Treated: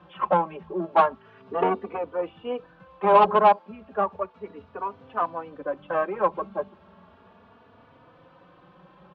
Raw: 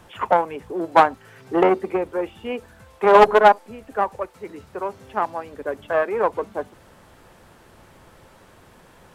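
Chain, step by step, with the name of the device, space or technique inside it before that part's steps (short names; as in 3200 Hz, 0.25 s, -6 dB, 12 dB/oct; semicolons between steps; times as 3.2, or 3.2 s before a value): barber-pole flanger into a guitar amplifier (endless flanger 3.4 ms +0.34 Hz; soft clip -10 dBFS, distortion -13 dB; speaker cabinet 78–3400 Hz, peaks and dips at 120 Hz -7 dB, 180 Hz +9 dB, 580 Hz +3 dB, 1100 Hz +6 dB, 2000 Hz -7 dB); gain -1.5 dB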